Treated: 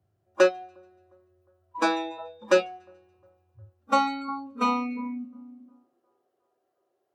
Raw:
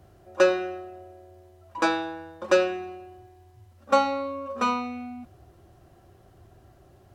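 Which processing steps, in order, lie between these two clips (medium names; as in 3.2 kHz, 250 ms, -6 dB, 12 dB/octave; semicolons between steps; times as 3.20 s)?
two-band feedback delay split 1.3 kHz, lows 357 ms, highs 143 ms, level -13 dB; high-pass sweep 100 Hz -> 440 Hz, 4.33–6.35 s; spectral noise reduction 22 dB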